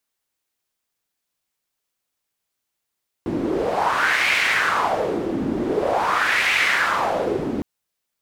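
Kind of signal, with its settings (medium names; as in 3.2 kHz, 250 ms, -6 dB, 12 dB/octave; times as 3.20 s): wind-like swept noise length 4.36 s, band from 280 Hz, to 2.2 kHz, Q 3.4, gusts 2, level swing 4.5 dB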